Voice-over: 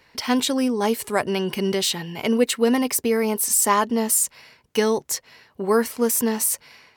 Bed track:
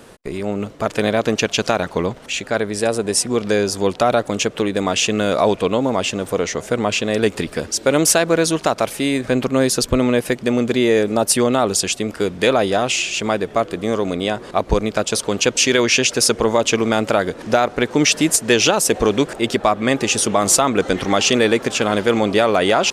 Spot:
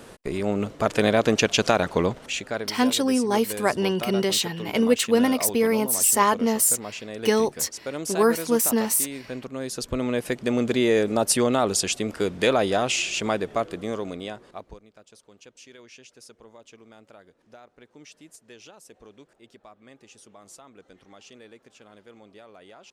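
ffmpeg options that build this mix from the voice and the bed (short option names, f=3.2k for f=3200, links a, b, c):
-filter_complex "[0:a]adelay=2500,volume=-0.5dB[a];[1:a]volume=9.5dB,afade=t=out:st=2.07:d=0.68:silence=0.188365,afade=t=in:st=9.6:d=1.05:silence=0.266073,afade=t=out:st=13.24:d=1.56:silence=0.0398107[b];[a][b]amix=inputs=2:normalize=0"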